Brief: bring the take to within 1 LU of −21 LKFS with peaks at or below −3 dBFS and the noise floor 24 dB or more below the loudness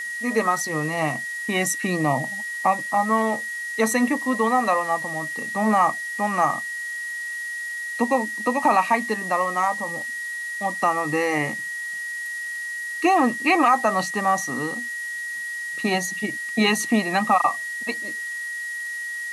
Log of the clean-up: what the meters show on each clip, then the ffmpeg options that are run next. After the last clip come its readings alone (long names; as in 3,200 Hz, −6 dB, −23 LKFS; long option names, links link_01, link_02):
interfering tone 1,900 Hz; level of the tone −28 dBFS; background noise floor −31 dBFS; target noise floor −47 dBFS; integrated loudness −23.0 LKFS; sample peak −6.0 dBFS; target loudness −21.0 LKFS
→ -af "bandreject=frequency=1900:width=30"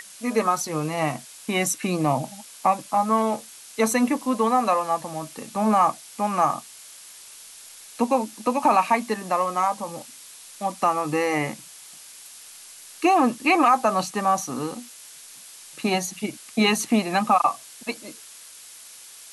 interfering tone none found; background noise floor −45 dBFS; target noise floor −48 dBFS
→ -af "afftdn=noise_reduction=6:noise_floor=-45"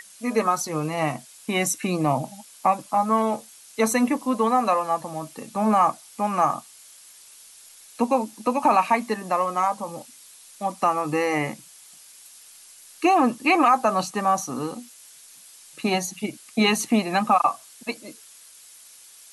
background noise floor −49 dBFS; integrated loudness −23.5 LKFS; sample peak −7.0 dBFS; target loudness −21.0 LKFS
→ -af "volume=2.5dB"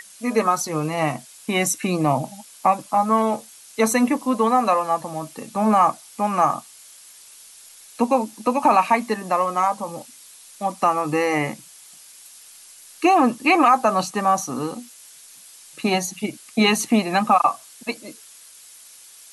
integrated loudness −21.0 LKFS; sample peak −4.5 dBFS; background noise floor −46 dBFS